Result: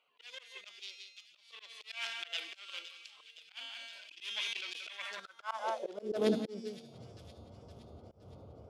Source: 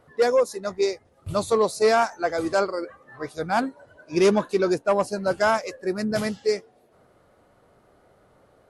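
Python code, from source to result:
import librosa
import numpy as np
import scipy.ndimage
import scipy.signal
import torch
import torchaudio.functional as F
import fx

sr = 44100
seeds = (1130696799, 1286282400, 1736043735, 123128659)

p1 = fx.wiener(x, sr, points=25)
p2 = fx.peak_eq(p1, sr, hz=3400.0, db=14.0, octaves=0.31)
p3 = fx.comb_fb(p2, sr, f0_hz=230.0, decay_s=0.74, harmonics='all', damping=0.0, mix_pct=70)
p4 = p3 + fx.echo_single(p3, sr, ms=179, db=-18.5, dry=0)
p5 = fx.tube_stage(p4, sr, drive_db=20.0, bias=0.55)
p6 = fx.low_shelf(p5, sr, hz=310.0, db=4.5)
p7 = fx.auto_swell(p6, sr, attack_ms=511.0)
p8 = fx.over_compress(p7, sr, threshold_db=-41.0, ratio=-0.5)
p9 = p7 + (p8 * librosa.db_to_amplitude(-2.0))
p10 = fx.echo_wet_highpass(p9, sr, ms=516, feedback_pct=57, hz=3000.0, wet_db=-13.5)
p11 = fx.filter_sweep_highpass(p10, sr, from_hz=2600.0, to_hz=79.0, start_s=4.91, end_s=7.25, q=3.9)
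p12 = fx.auto_swell(p11, sr, attack_ms=170.0)
p13 = fx.sustainer(p12, sr, db_per_s=25.0, at=(3.43, 5.2))
y = p13 * librosa.db_to_amplitude(8.5)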